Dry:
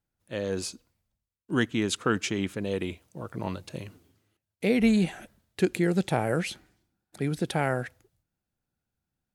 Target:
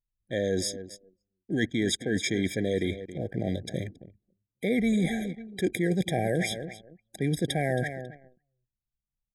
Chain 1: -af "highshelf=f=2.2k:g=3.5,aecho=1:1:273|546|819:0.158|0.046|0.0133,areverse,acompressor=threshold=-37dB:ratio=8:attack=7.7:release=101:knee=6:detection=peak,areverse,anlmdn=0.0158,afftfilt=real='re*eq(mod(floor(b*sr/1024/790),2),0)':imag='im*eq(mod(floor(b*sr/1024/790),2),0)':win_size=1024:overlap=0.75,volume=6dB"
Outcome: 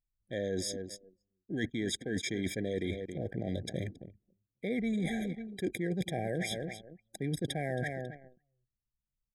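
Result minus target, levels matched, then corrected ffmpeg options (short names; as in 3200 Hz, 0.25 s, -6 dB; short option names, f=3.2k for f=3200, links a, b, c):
compressor: peak gain reduction +7.5 dB
-af "highshelf=f=2.2k:g=3.5,aecho=1:1:273|546|819:0.158|0.046|0.0133,areverse,acompressor=threshold=-28.5dB:ratio=8:attack=7.7:release=101:knee=6:detection=peak,areverse,anlmdn=0.0158,afftfilt=real='re*eq(mod(floor(b*sr/1024/790),2),0)':imag='im*eq(mod(floor(b*sr/1024/790),2),0)':win_size=1024:overlap=0.75,volume=6dB"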